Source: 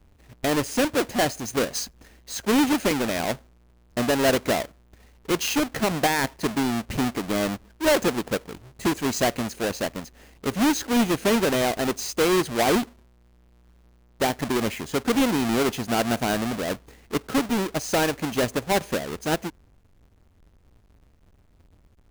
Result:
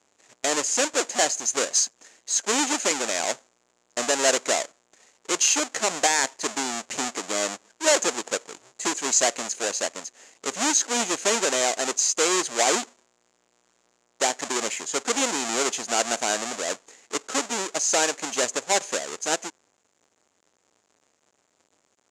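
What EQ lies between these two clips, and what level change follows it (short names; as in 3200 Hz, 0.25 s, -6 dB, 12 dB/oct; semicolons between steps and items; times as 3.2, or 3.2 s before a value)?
HPF 470 Hz 12 dB/oct; synth low-pass 7100 Hz, resonance Q 5.8; 0.0 dB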